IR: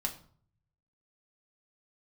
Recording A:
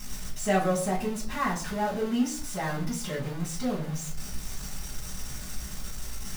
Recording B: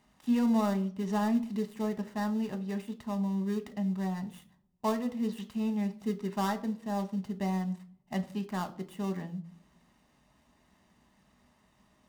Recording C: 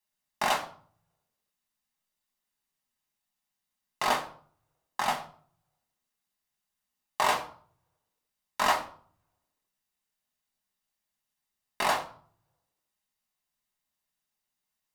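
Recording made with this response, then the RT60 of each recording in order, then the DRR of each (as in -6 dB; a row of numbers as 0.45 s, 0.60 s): C; 0.50 s, 0.50 s, 0.50 s; -8.0 dB, 6.5 dB, 1.5 dB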